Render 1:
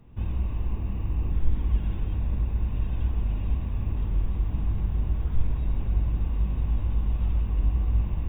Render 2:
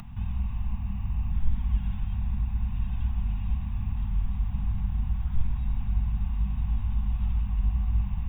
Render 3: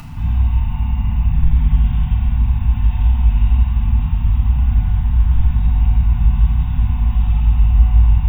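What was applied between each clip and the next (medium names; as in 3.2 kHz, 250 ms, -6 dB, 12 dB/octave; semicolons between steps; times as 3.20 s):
elliptic band-stop 220–750 Hz, stop band 50 dB; peaking EQ 260 Hz +3.5 dB 0.75 oct; upward compressor, threshold -29 dBFS; trim -1.5 dB
FDN reverb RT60 1.6 s, low-frequency decay 1.3×, high-frequency decay 1×, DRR -6 dB; trim +6 dB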